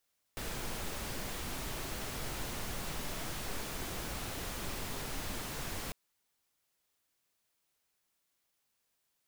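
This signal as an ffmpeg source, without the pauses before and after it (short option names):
-f lavfi -i "anoisesrc=c=pink:a=0.0575:d=5.55:r=44100:seed=1"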